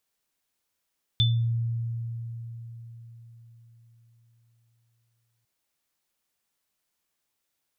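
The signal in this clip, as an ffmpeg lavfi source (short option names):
-f lavfi -i "aevalsrc='0.112*pow(10,-3*t/4.64)*sin(2*PI*116*t)+0.126*pow(10,-3*t/0.31)*sin(2*PI*3520*t)':d=4.25:s=44100"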